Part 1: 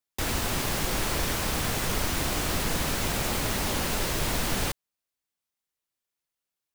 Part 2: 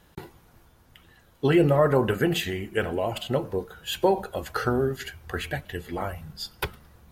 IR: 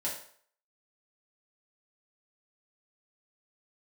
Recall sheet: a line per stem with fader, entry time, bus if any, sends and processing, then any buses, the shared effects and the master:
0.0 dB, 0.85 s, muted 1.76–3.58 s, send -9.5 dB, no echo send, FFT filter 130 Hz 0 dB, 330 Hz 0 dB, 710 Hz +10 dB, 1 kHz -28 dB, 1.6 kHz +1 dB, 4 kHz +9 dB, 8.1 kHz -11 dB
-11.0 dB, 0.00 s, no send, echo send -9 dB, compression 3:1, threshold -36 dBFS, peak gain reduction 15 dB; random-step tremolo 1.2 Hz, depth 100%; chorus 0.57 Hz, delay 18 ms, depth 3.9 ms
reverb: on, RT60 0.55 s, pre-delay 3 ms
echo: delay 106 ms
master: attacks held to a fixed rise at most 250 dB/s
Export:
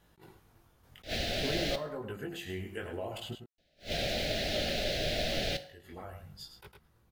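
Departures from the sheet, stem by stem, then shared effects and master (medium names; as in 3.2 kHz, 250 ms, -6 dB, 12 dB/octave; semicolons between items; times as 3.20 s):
stem 1 0.0 dB -> -9.0 dB; stem 2 -11.0 dB -> +0.5 dB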